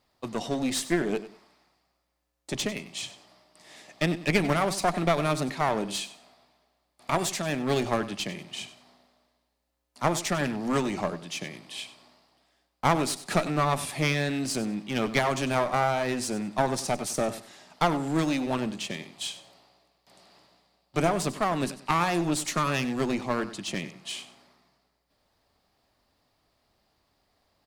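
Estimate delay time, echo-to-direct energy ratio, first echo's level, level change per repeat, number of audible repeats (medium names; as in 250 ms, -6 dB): 96 ms, -14.0 dB, -14.5 dB, -12.0 dB, 2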